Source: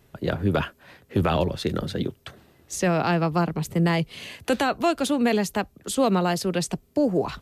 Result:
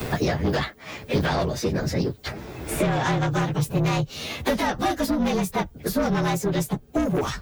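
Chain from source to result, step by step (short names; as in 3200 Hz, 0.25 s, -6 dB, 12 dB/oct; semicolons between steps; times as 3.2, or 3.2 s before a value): inharmonic rescaling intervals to 112%; soft clip -24 dBFS, distortion -10 dB; harmoniser -4 st -10 dB; three-band squash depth 100%; gain +5 dB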